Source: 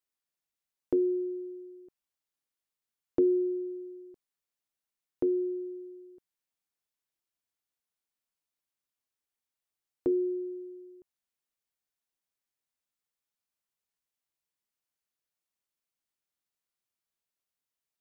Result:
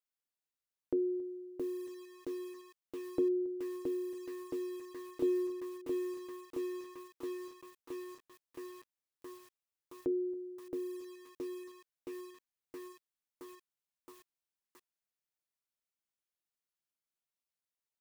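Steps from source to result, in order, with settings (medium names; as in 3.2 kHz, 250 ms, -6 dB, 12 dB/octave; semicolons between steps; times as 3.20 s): delay 275 ms -22 dB; bit-crushed delay 670 ms, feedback 80%, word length 8-bit, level -4 dB; trim -6 dB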